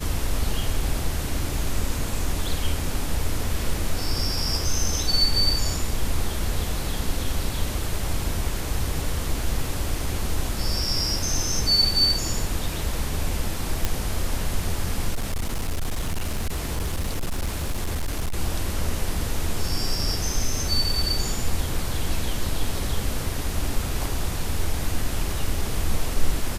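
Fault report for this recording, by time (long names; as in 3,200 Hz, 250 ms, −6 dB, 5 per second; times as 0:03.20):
0:13.85: click −7 dBFS
0:15.14–0:18.38: clipping −21.5 dBFS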